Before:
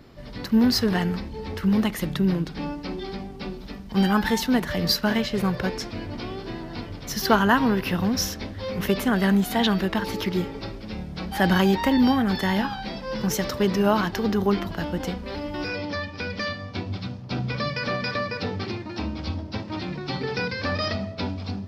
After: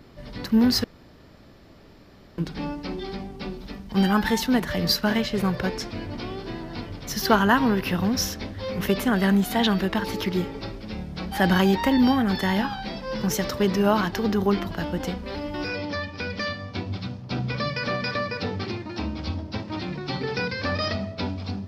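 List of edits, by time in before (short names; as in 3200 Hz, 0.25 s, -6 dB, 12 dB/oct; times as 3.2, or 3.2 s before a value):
0.84–2.38 room tone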